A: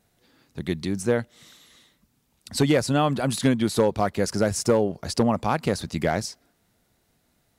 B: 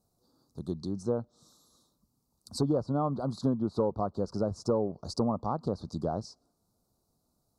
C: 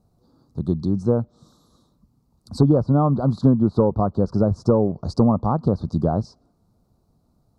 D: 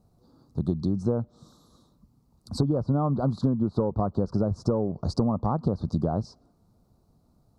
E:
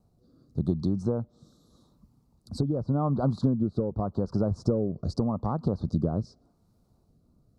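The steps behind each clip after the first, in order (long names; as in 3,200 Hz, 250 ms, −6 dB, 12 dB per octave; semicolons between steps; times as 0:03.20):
Chebyshev band-stop filter 1,200–4,300 Hz, order 3; treble cut that deepens with the level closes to 1,800 Hz, closed at −19 dBFS; level −7 dB
bass and treble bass +7 dB, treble −12 dB; level +8.5 dB
downward compressor 6 to 1, threshold −21 dBFS, peak gain reduction 10.5 dB
rotating-speaker cabinet horn 0.85 Hz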